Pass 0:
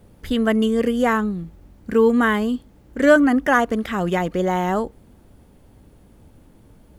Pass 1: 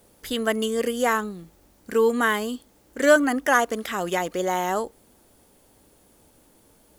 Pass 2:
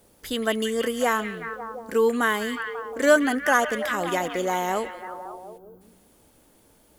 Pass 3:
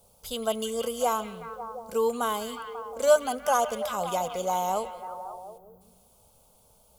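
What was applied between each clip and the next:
tone controls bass -13 dB, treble +10 dB; trim -2 dB
repeats whose band climbs or falls 180 ms, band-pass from 2.6 kHz, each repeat -0.7 oct, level -4.5 dB; time-frequency box 5.58–5.81 s, 1.6–12 kHz -17 dB; trim -1 dB
static phaser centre 750 Hz, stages 4; on a send at -21.5 dB: reverberation RT60 2.2 s, pre-delay 4 ms

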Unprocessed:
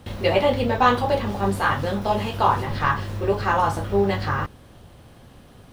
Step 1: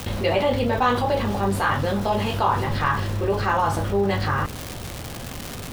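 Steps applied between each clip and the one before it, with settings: crackle 370 per s -34 dBFS; level flattener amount 50%; trim -4 dB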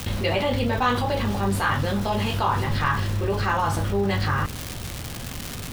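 peaking EQ 580 Hz -5.5 dB 2.2 oct; trim +1.5 dB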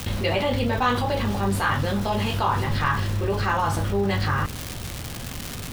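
no audible change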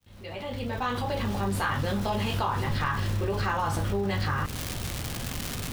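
fade-in on the opening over 1.84 s; compression, threshold -24 dBFS, peak gain reduction 6.5 dB

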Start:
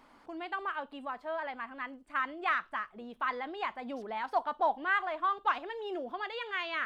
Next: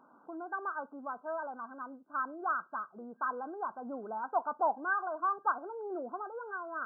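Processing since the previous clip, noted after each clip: FFT band-pass 130–1600 Hz; trim -1 dB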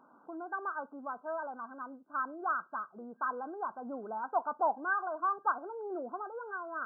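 no audible change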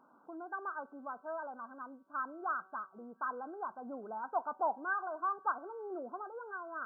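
feedback comb 190 Hz, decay 1.5 s, mix 40%; trim +1 dB

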